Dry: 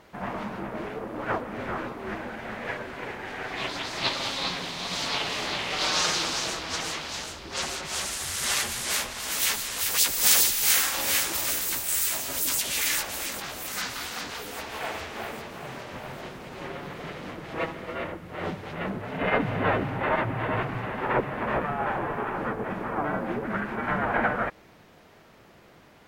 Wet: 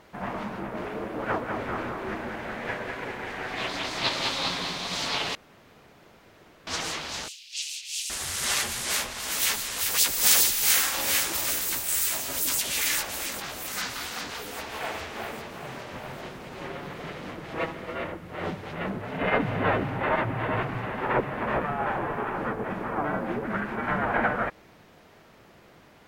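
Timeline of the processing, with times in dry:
0.57–4.78 echo 0.2 s -5 dB
5.35–6.67 room tone
7.28–8.1 elliptic high-pass 2600 Hz, stop band 70 dB

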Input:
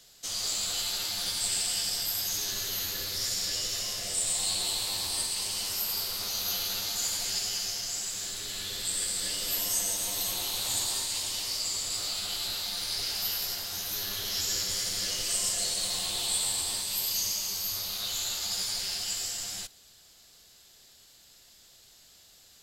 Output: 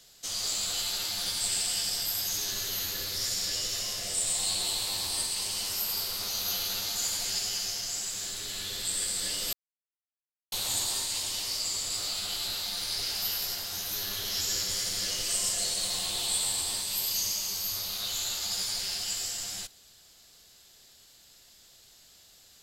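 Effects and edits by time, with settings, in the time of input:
9.53–10.52 mute

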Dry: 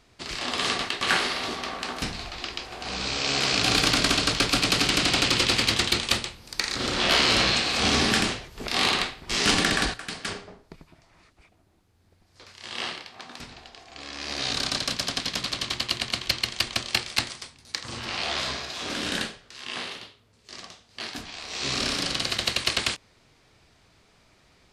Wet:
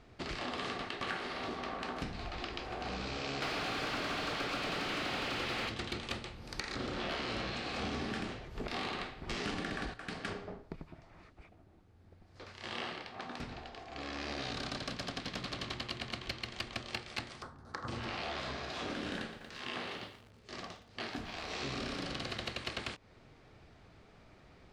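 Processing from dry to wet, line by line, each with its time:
3.42–5.69 overdrive pedal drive 30 dB, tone 3800 Hz, clips at -8.5 dBFS
17.42–17.88 resonant high shelf 1800 Hz -10 dB, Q 3
19.17–21.96 lo-fi delay 0.117 s, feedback 80%, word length 7-bit, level -15 dB
whole clip: LPF 1300 Hz 6 dB/oct; notch 990 Hz, Q 17; compressor 5:1, threshold -40 dBFS; gain +3 dB

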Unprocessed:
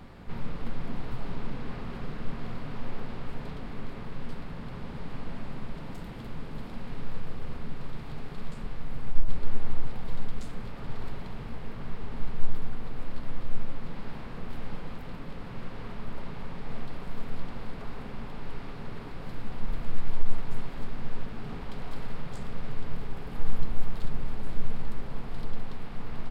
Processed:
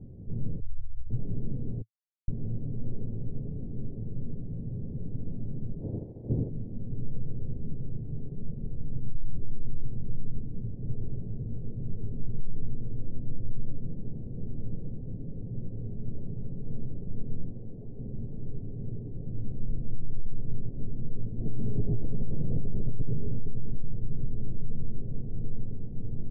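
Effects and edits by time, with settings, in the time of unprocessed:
0.6–1.1 inverse Chebyshev band-stop 150–870 Hz
1.82–2.28 mute
5.8–6.48 spectral limiter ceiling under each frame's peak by 26 dB
8.99–10.83 bell 570 Hz -4 dB
17.52–17.99 low shelf 190 Hz -7.5 dB
21.34–23.05 reverb throw, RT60 2.1 s, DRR -11.5 dB
whole clip: inverse Chebyshev low-pass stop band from 1200 Hz, stop band 50 dB; bell 110 Hz +10 dB 0.81 oct; limiter -17 dBFS

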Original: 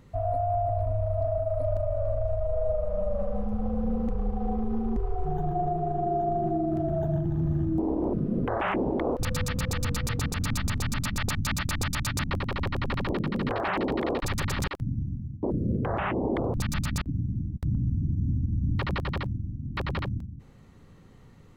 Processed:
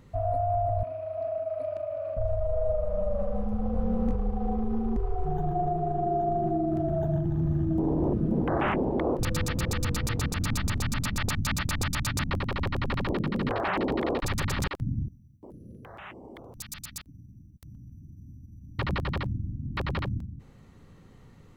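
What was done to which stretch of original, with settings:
0.83–2.17 speaker cabinet 310–10000 Hz, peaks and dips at 330 Hz +3 dB, 520 Hz -5 dB, 890 Hz -7 dB, 2500 Hz +9 dB, 5900 Hz -4 dB, 8500 Hz -7 dB
3.72–4.16 doubler 21 ms -2 dB
7.17–8.22 echo throw 0.53 s, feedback 60%, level -5 dB
15.08–18.79 pre-emphasis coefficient 0.9

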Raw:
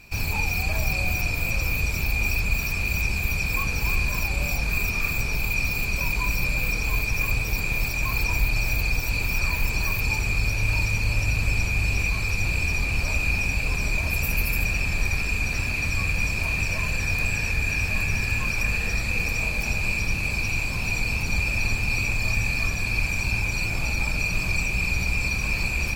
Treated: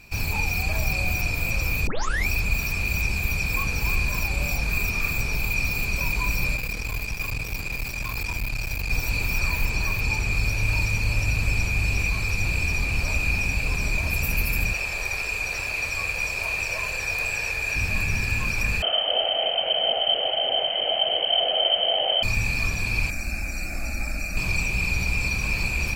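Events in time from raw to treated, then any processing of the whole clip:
1.87 tape start 0.40 s
6.56–8.9 tube stage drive 22 dB, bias 0.75
9.65–10.32 high shelf 12000 Hz -9 dB
14.73–17.75 resonant low shelf 340 Hz -11 dB, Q 1.5
18.82–22.23 inverted band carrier 3100 Hz
23.1–24.37 fixed phaser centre 650 Hz, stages 8

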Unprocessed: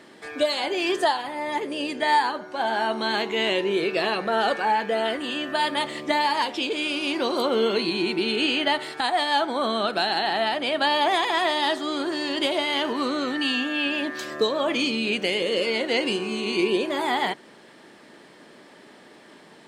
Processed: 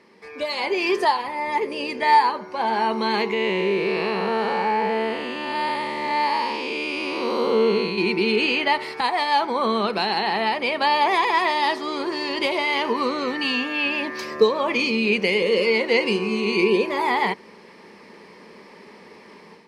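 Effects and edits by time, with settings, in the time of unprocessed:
3.33–7.98 time blur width 0.28 s
whole clip: high shelf 7500 Hz -9 dB; AGC gain up to 9 dB; ripple EQ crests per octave 0.85, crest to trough 10 dB; gain -6 dB

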